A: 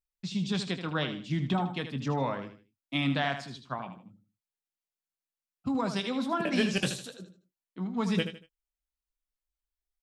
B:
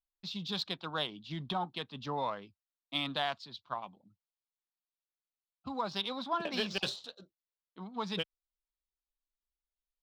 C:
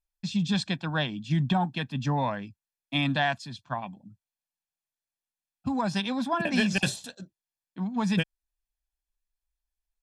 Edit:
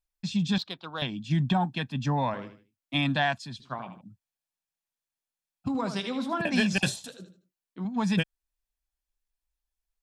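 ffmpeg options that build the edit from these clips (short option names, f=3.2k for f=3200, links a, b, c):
-filter_complex "[0:a]asplit=4[a][b][c][d];[2:a]asplit=6[e][f][g][h][i][j];[e]atrim=end=0.582[k];[1:a]atrim=start=0.578:end=1.022[l];[f]atrim=start=1.018:end=2.342[m];[a]atrim=start=2.338:end=2.942[n];[g]atrim=start=2.938:end=3.602[o];[b]atrim=start=3.598:end=4.012[p];[h]atrim=start=4.008:end=5.682[q];[c]atrim=start=5.678:end=6.412[r];[i]atrim=start=6.408:end=7.082[s];[d]atrim=start=7.078:end=7.852[t];[j]atrim=start=7.848[u];[k][l]acrossfade=d=0.004:c1=hsin:c2=hsin[v];[v][m]acrossfade=d=0.004:c1=hsin:c2=hsin[w];[w][n]acrossfade=d=0.004:c1=hsin:c2=hsin[x];[x][o]acrossfade=d=0.004:c1=hsin:c2=hsin[y];[y][p]acrossfade=d=0.004:c1=hsin:c2=hsin[z];[z][q]acrossfade=d=0.004:c1=hsin:c2=hsin[aa];[aa][r]acrossfade=d=0.004:c1=hsin:c2=hsin[ab];[ab][s]acrossfade=d=0.004:c1=hsin:c2=hsin[ac];[ac][t]acrossfade=d=0.004:c1=hsin:c2=hsin[ad];[ad][u]acrossfade=d=0.004:c1=hsin:c2=hsin"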